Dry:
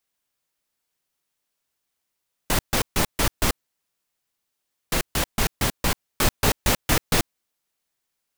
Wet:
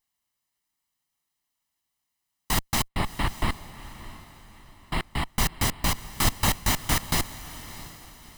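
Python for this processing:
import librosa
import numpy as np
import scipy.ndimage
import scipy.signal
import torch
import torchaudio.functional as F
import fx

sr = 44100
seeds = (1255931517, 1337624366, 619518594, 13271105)

y = fx.lower_of_two(x, sr, delay_ms=1.0)
y = fx.rider(y, sr, range_db=10, speed_s=2.0)
y = fx.moving_average(y, sr, points=7, at=(2.88, 5.36))
y = fx.echo_diffused(y, sr, ms=642, feedback_pct=40, wet_db=-15.0)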